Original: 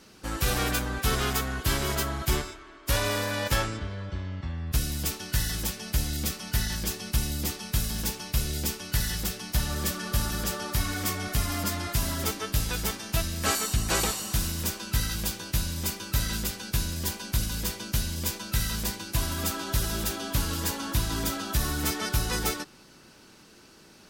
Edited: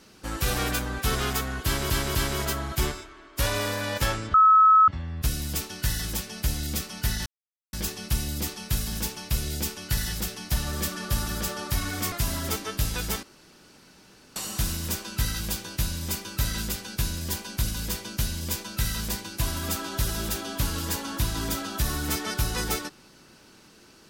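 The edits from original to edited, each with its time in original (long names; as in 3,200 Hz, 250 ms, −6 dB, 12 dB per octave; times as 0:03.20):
0:01.65–0:01.90: repeat, 3 plays
0:03.84–0:04.38: beep over 1,290 Hz −12.5 dBFS
0:06.76: splice in silence 0.47 s
0:11.15–0:11.87: remove
0:12.98–0:14.11: fill with room tone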